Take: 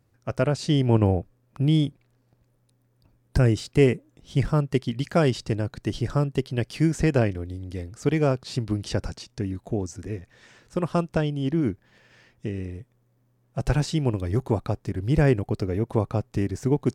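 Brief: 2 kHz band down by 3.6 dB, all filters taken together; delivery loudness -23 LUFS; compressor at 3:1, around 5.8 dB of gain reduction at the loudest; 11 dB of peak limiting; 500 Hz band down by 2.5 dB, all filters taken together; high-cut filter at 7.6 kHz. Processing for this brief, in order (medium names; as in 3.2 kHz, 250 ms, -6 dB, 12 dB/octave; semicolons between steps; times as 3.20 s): low-pass 7.6 kHz; peaking EQ 500 Hz -3 dB; peaking EQ 2 kHz -4.5 dB; compression 3:1, threshold -23 dBFS; trim +11.5 dB; peak limiter -12.5 dBFS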